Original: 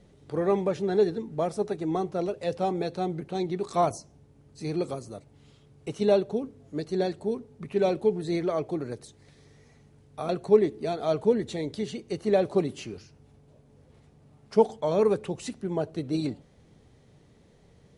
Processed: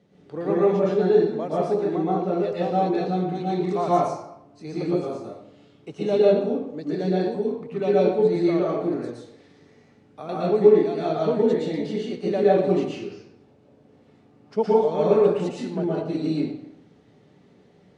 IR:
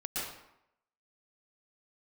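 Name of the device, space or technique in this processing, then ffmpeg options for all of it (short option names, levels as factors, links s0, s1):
supermarket ceiling speaker: -filter_complex "[0:a]bass=f=250:g=13,treble=f=4000:g=-3,asettb=1/sr,asplit=3[s0][s1][s2];[s0]atrim=end=1.784[s3];[s1]atrim=start=1.78:end=2.44,asetpts=PTS-STARTPTS,afade=t=in:d=0.004:c=qsin,afade=t=out:st=0.656:d=0.004:c=qsin,acrossover=split=3100[s4][s5];[s5]acompressor=threshold=0.00126:ratio=4:attack=1:release=60[s6];[s4][s6]amix=inputs=2:normalize=0[s7];[s2]atrim=start=2.436[s8];[s3][s7]acrossfade=d=0.004:c1=hsin:c2=qsin[s9];[s9][s8]acrossfade=d=0.004:c1=qsin:c2=hsin,highpass=280,lowpass=6400[s10];[1:a]atrim=start_sample=2205[s11];[s10][s11]afir=irnorm=-1:irlink=0,lowshelf=f=190:g=-3"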